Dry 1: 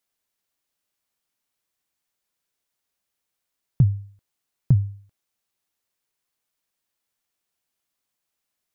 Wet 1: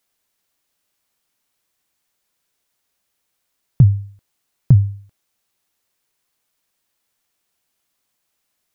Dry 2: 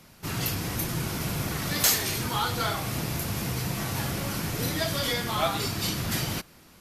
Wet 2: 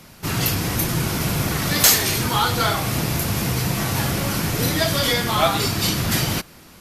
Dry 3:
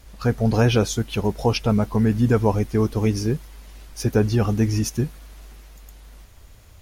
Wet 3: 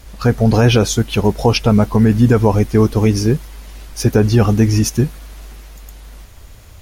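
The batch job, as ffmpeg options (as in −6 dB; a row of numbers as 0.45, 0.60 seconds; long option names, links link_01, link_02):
-af "alimiter=level_in=9dB:limit=-1dB:release=50:level=0:latency=1,volume=-1dB"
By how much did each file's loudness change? +6.5, +8.0, +7.0 LU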